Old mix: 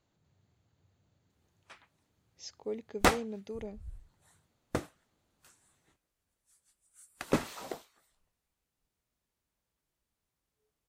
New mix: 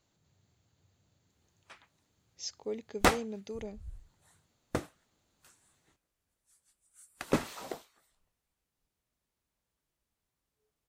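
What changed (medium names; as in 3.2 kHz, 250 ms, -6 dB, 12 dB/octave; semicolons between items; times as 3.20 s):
background: add treble shelf 4.1 kHz -10 dB; master: add treble shelf 4 kHz +10 dB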